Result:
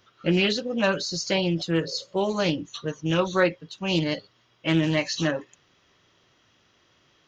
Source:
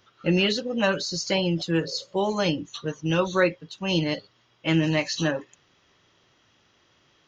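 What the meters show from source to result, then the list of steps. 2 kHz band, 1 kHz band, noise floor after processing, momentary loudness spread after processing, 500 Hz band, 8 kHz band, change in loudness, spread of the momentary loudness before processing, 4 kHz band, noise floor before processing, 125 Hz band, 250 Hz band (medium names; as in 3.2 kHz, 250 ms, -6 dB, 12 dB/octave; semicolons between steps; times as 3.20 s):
0.0 dB, -0.5 dB, -64 dBFS, 8 LU, 0.0 dB, no reading, 0.0 dB, 8 LU, -0.5 dB, -64 dBFS, -0.5 dB, 0.0 dB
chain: band-stop 850 Hz, Q 21; loudspeaker Doppler distortion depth 0.17 ms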